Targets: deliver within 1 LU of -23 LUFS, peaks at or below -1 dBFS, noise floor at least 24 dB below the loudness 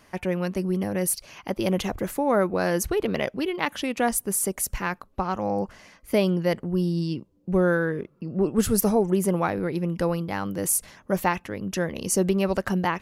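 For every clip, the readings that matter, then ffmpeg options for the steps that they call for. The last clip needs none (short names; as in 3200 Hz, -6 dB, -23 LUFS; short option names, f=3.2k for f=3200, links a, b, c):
loudness -25.5 LUFS; peak -9.5 dBFS; loudness target -23.0 LUFS
-> -af "volume=2.5dB"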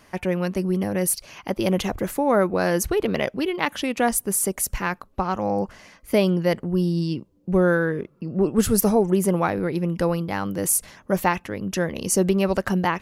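loudness -23.0 LUFS; peak -7.0 dBFS; noise floor -57 dBFS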